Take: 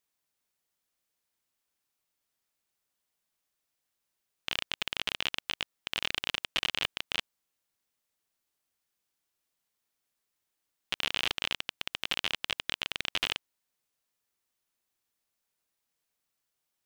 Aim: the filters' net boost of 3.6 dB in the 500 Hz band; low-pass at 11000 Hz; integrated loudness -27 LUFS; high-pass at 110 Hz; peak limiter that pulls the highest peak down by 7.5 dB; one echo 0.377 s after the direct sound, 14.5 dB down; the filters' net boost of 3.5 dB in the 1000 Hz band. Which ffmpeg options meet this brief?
-af "highpass=110,lowpass=11k,equalizer=f=500:t=o:g=3.5,equalizer=f=1k:t=o:g=3.5,alimiter=limit=-16.5dB:level=0:latency=1,aecho=1:1:377:0.188,volume=10.5dB"

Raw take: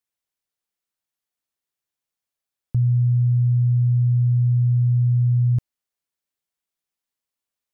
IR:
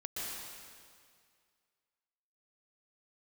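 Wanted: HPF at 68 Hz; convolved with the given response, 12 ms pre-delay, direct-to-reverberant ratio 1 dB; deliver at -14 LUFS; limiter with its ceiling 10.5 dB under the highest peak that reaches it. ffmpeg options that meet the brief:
-filter_complex "[0:a]highpass=68,alimiter=level_in=1dB:limit=-24dB:level=0:latency=1,volume=-1dB,asplit=2[a][b];[1:a]atrim=start_sample=2205,adelay=12[c];[b][c]afir=irnorm=-1:irlink=0,volume=-3dB[d];[a][d]amix=inputs=2:normalize=0,volume=19.5dB"

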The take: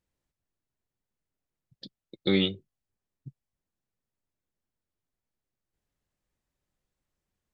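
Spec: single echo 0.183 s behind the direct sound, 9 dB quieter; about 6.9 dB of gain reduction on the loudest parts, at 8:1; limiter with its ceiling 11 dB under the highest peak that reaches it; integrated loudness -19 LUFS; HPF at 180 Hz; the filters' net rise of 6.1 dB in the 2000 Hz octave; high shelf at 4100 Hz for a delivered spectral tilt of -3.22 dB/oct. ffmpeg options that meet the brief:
-af "highpass=180,equalizer=f=2k:t=o:g=8,highshelf=f=4.1k:g=-5,acompressor=threshold=-26dB:ratio=8,alimiter=level_in=2.5dB:limit=-24dB:level=0:latency=1,volume=-2.5dB,aecho=1:1:183:0.355,volume=24dB"

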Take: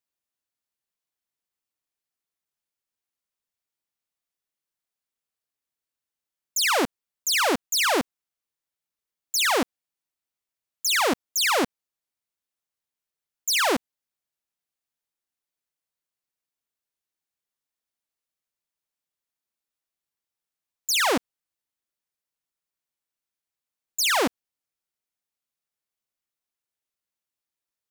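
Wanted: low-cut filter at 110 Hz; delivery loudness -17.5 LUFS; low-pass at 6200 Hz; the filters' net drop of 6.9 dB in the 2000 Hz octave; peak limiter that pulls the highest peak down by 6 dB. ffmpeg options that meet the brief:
-af "highpass=110,lowpass=6.2k,equalizer=f=2k:t=o:g=-9,volume=10dB,alimiter=limit=-10dB:level=0:latency=1"

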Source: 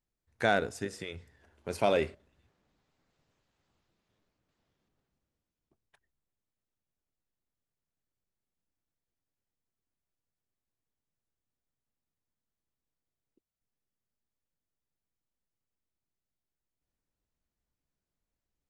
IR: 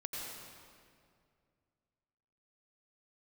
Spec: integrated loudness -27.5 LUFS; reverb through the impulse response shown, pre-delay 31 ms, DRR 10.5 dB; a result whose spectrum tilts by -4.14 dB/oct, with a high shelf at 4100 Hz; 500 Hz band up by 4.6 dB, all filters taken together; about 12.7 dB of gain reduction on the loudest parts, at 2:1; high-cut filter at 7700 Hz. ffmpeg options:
-filter_complex "[0:a]lowpass=7.7k,equalizer=f=500:t=o:g=5.5,highshelf=f=4.1k:g=7.5,acompressor=threshold=-42dB:ratio=2,asplit=2[a][b];[1:a]atrim=start_sample=2205,adelay=31[c];[b][c]afir=irnorm=-1:irlink=0,volume=-11.5dB[d];[a][d]amix=inputs=2:normalize=0,volume=13dB"

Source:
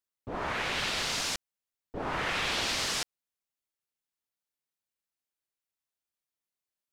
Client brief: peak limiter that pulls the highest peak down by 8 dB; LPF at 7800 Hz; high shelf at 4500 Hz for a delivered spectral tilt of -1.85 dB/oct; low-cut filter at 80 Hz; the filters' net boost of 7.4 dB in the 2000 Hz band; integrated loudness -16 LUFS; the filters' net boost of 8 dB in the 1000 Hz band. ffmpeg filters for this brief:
-af "highpass=80,lowpass=7.8k,equalizer=f=1k:t=o:g=8,equalizer=f=2k:t=o:g=8,highshelf=f=4.5k:g=-6,volume=14dB,alimiter=limit=-7dB:level=0:latency=1"

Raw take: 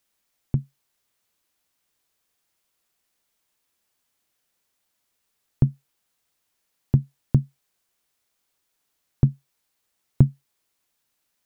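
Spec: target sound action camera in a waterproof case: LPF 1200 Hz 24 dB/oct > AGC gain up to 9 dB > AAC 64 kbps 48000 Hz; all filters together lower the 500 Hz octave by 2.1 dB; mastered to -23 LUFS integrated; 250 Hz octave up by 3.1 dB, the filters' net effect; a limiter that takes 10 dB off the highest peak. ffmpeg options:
-af "equalizer=f=250:t=o:g=6.5,equalizer=f=500:t=o:g=-7,alimiter=limit=-10dB:level=0:latency=1,lowpass=f=1.2k:w=0.5412,lowpass=f=1.2k:w=1.3066,dynaudnorm=m=9dB,volume=5.5dB" -ar 48000 -c:a aac -b:a 64k

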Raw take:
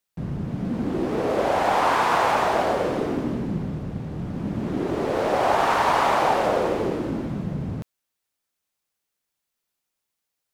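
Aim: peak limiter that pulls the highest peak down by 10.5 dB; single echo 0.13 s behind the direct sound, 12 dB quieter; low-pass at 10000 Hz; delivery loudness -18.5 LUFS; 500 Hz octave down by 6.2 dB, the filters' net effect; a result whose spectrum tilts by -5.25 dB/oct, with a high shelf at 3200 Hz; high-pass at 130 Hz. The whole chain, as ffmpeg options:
-af "highpass=130,lowpass=10k,equalizer=f=500:t=o:g=-8,highshelf=f=3.2k:g=-4,alimiter=limit=-21.5dB:level=0:latency=1,aecho=1:1:130:0.251,volume=12dB"

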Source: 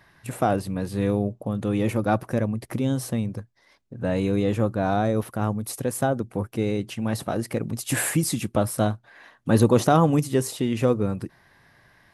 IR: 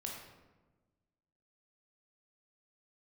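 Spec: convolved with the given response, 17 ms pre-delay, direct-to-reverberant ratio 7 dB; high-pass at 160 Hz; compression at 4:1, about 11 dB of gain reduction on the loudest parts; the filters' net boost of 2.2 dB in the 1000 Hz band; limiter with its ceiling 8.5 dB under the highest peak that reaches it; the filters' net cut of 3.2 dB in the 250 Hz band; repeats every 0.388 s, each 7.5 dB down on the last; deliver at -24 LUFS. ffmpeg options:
-filter_complex "[0:a]highpass=160,equalizer=f=250:t=o:g=-3,equalizer=f=1k:t=o:g=3.5,acompressor=threshold=-26dB:ratio=4,alimiter=limit=-20.5dB:level=0:latency=1,aecho=1:1:388|776|1164|1552|1940:0.422|0.177|0.0744|0.0312|0.0131,asplit=2[a][b];[1:a]atrim=start_sample=2205,adelay=17[c];[b][c]afir=irnorm=-1:irlink=0,volume=-6dB[d];[a][d]amix=inputs=2:normalize=0,volume=7.5dB"

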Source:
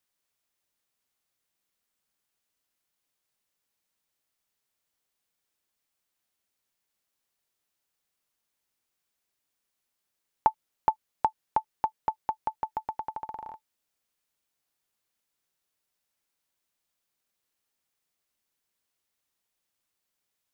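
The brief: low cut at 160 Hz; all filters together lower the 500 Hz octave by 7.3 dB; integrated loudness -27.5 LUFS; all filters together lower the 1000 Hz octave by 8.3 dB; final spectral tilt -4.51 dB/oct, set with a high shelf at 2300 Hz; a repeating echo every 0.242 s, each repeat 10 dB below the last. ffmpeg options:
-af "highpass=160,equalizer=f=500:t=o:g=-7,equalizer=f=1k:t=o:g=-8.5,highshelf=f=2.3k:g=7,aecho=1:1:242|484|726|968:0.316|0.101|0.0324|0.0104,volume=13.5dB"

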